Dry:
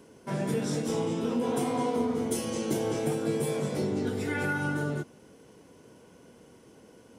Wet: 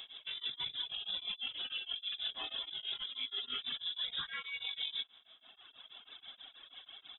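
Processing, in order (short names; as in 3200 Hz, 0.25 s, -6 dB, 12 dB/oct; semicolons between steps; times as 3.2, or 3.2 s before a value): reverb removal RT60 1.8 s; bell 2300 Hz +2 dB 0.47 oct, from 3.79 s +8.5 dB; negative-ratio compressor -36 dBFS, ratio -0.5; limiter -32 dBFS, peak gain reduction 10 dB; inverted band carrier 3700 Hz; beating tremolo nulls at 6.2 Hz; gain +3 dB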